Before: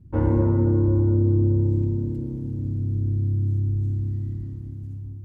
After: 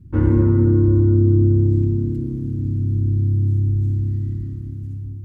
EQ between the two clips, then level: band shelf 680 Hz -10.5 dB 1.2 oct; +5.0 dB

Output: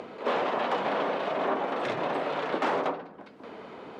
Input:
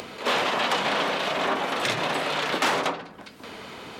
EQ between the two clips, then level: band-pass 460 Hz, Q 0.64; 0.0 dB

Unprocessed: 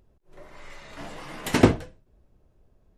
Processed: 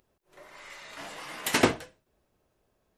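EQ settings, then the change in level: tilt +4 dB/oct; high shelf 3500 Hz -9.5 dB; 0.0 dB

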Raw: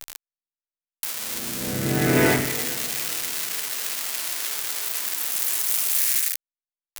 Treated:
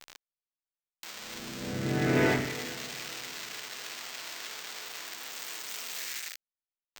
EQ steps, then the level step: running mean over 4 samples; -6.0 dB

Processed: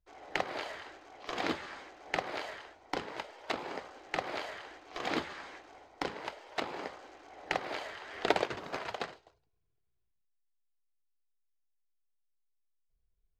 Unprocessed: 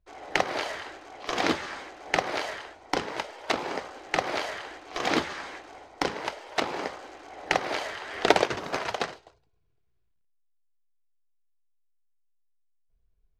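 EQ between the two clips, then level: dynamic EQ 5800 Hz, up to -6 dB, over -54 dBFS, Q 4.5; bell 10000 Hz -5.5 dB 0.53 oct; -8.0 dB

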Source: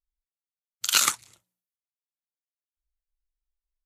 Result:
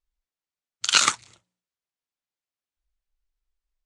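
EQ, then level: steep low-pass 9400 Hz 36 dB/oct; air absorption 52 m; +5.0 dB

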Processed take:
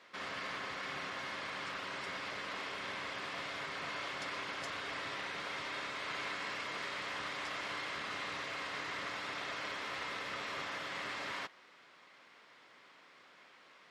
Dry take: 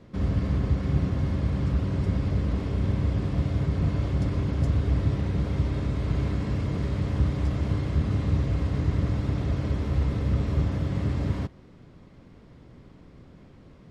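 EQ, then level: HPF 1500 Hz 12 dB/oct; high shelf 4800 Hz -10.5 dB; +9.0 dB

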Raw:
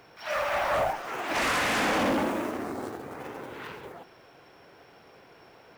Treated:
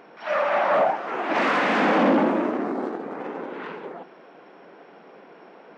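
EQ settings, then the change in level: brick-wall FIR high-pass 160 Hz; tape spacing loss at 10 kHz 31 dB; +9.0 dB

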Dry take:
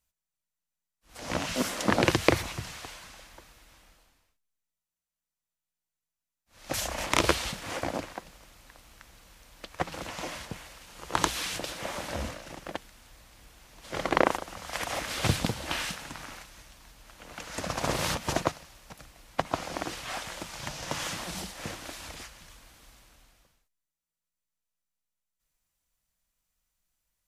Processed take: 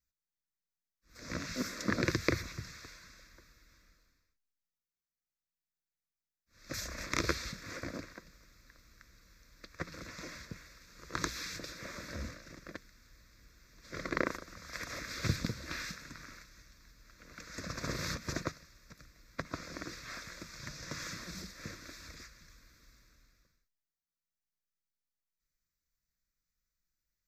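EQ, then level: fixed phaser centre 3000 Hz, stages 6; -5.0 dB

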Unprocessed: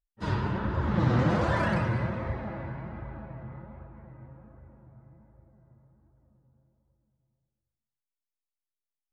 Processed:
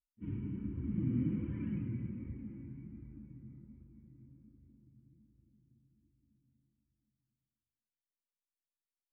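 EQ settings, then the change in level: vocal tract filter i; air absorption 300 m; fixed phaser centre 1600 Hz, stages 4; +1.0 dB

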